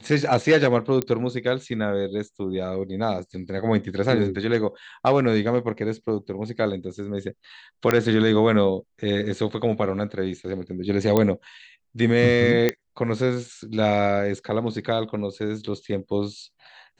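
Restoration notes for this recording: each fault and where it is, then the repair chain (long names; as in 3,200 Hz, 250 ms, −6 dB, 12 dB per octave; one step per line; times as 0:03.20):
0:01.02: click −10 dBFS
0:07.91: click −6 dBFS
0:11.17: click −7 dBFS
0:12.69: click −7 dBFS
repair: click removal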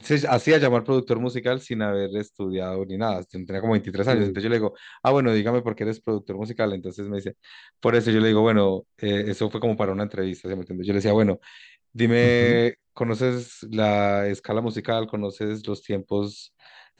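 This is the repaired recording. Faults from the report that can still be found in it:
none of them is left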